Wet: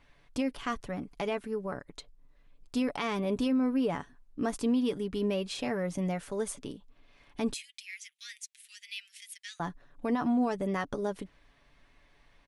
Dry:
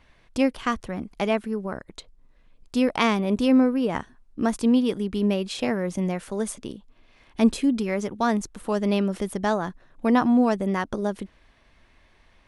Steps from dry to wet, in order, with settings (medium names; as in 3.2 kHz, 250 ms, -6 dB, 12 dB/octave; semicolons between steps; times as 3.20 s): 7.53–9.60 s: steep high-pass 2 kHz 48 dB/octave; comb 7 ms, depth 44%; peak limiter -15.5 dBFS, peak gain reduction 9.5 dB; trim -5.5 dB